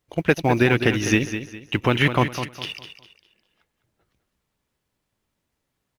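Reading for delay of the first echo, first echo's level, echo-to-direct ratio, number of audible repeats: 0.204 s, -10.0 dB, -9.5 dB, 3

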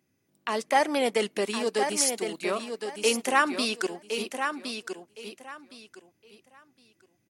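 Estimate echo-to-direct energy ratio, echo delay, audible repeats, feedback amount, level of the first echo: -7.0 dB, 1.064 s, 3, 22%, -7.0 dB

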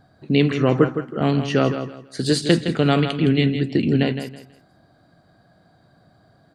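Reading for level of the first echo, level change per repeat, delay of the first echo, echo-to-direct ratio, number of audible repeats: -9.0 dB, -11.5 dB, 0.163 s, -8.5 dB, 3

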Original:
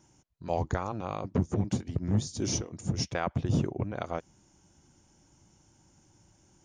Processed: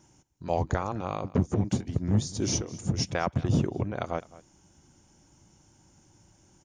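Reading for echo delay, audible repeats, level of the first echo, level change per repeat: 0.211 s, 1, -19.5 dB, no steady repeat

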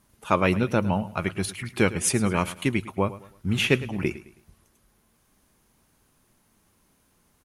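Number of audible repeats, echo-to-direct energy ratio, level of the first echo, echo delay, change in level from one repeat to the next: 3, -16.0 dB, -16.5 dB, 0.107 s, -9.0 dB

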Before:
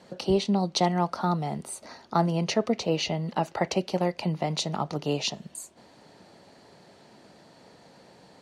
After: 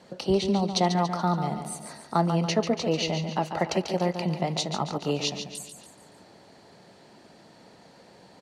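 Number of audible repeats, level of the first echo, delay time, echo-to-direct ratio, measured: 4, -8.0 dB, 0.142 s, -7.0 dB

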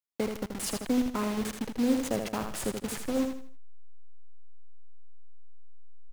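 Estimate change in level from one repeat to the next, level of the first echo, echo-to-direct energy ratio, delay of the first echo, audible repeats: -9.5 dB, -6.0 dB, -5.5 dB, 80 ms, 4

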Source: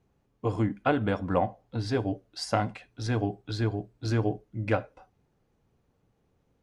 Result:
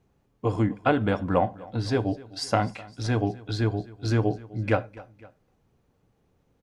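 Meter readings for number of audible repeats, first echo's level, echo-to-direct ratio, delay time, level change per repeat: 2, -21.0 dB, -20.0 dB, 0.255 s, -5.0 dB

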